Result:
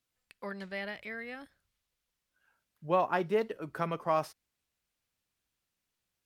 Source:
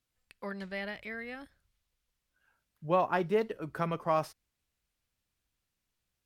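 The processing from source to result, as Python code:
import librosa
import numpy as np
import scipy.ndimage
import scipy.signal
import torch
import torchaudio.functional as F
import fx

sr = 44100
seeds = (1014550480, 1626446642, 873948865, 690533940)

y = fx.low_shelf(x, sr, hz=100.0, db=-10.0)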